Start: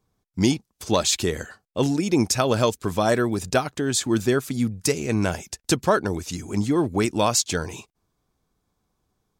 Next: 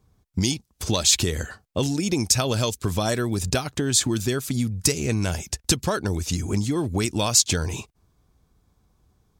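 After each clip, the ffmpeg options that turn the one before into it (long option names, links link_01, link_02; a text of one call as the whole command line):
ffmpeg -i in.wav -filter_complex "[0:a]equalizer=frequency=62:width_type=o:width=2.3:gain=11,acrossover=split=2800[link_01][link_02];[link_01]acompressor=threshold=-26dB:ratio=6[link_03];[link_03][link_02]amix=inputs=2:normalize=0,volume=4.5dB" out.wav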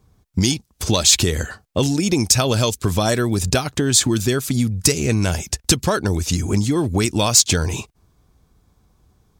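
ffmpeg -i in.wav -af "asoftclip=type=tanh:threshold=-6.5dB,volume=5.5dB" out.wav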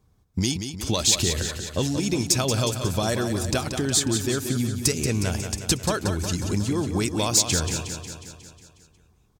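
ffmpeg -i in.wav -af "aecho=1:1:181|362|543|724|905|1086|1267|1448:0.398|0.239|0.143|0.086|0.0516|0.031|0.0186|0.0111,volume=-6.5dB" out.wav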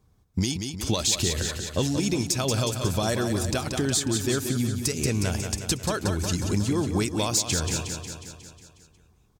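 ffmpeg -i in.wav -af "alimiter=limit=-13.5dB:level=0:latency=1:release=193" out.wav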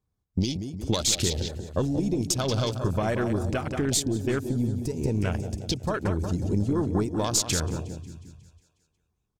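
ffmpeg -i in.wav -af "aeval=exprs='0.224*(cos(1*acos(clip(val(0)/0.224,-1,1)))-cos(1*PI/2))+0.0398*(cos(2*acos(clip(val(0)/0.224,-1,1)))-cos(2*PI/2))':channel_layout=same,afwtdn=0.0224" out.wav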